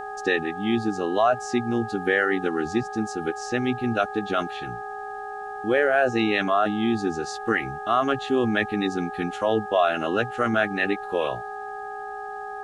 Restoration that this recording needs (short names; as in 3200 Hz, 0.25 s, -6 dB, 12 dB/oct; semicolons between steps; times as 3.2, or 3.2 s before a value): de-hum 414.4 Hz, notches 4; notch 770 Hz, Q 30; expander -27 dBFS, range -21 dB